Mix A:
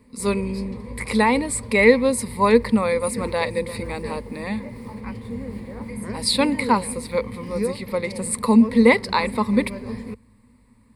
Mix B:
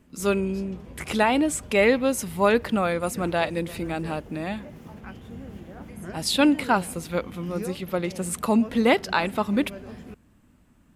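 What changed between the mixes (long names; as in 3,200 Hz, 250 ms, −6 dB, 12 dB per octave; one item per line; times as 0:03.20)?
background −4.5 dB
master: remove EQ curve with evenly spaced ripples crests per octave 0.94, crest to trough 15 dB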